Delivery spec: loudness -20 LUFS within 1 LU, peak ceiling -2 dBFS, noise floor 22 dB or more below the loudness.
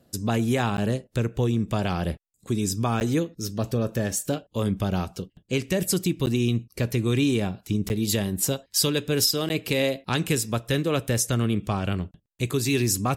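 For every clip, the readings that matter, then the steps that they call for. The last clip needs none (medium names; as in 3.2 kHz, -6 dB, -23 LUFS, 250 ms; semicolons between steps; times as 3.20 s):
dropouts 5; longest dropout 9.9 ms; loudness -25.5 LUFS; peak level -9.0 dBFS; loudness target -20.0 LUFS
-> interpolate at 0.77/3.00/6.26/7.89/9.49 s, 9.9 ms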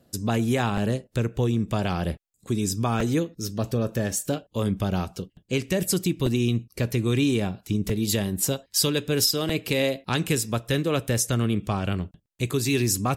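dropouts 0; loudness -25.5 LUFS; peak level -9.0 dBFS; loudness target -20.0 LUFS
-> trim +5.5 dB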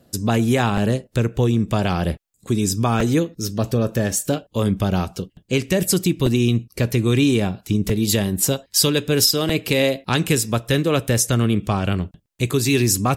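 loudness -20.0 LUFS; peak level -3.5 dBFS; noise floor -64 dBFS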